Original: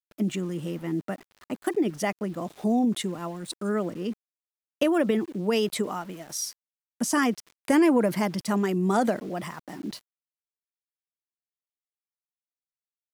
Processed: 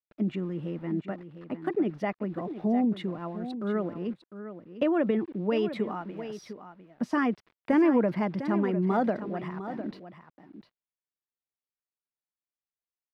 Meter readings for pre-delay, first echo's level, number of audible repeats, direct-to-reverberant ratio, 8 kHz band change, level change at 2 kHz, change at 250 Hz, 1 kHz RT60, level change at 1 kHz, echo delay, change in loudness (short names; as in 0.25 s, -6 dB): none, -11.5 dB, 1, none, under -25 dB, -4.5 dB, -1.5 dB, none, -3.0 dB, 0.703 s, -2.5 dB